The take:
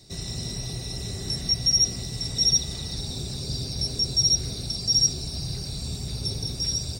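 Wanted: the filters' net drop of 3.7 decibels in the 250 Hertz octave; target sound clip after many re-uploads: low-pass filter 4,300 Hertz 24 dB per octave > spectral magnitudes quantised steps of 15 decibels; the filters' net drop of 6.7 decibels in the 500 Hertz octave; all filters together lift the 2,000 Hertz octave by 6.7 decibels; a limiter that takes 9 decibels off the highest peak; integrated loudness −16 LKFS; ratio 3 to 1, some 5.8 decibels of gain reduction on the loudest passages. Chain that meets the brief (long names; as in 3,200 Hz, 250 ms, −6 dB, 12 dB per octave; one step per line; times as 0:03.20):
parametric band 250 Hz −5 dB
parametric band 500 Hz −7.5 dB
parametric band 2,000 Hz +8 dB
downward compressor 3 to 1, threshold −24 dBFS
brickwall limiter −25 dBFS
low-pass filter 4,300 Hz 24 dB per octave
spectral magnitudes quantised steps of 15 dB
level +21 dB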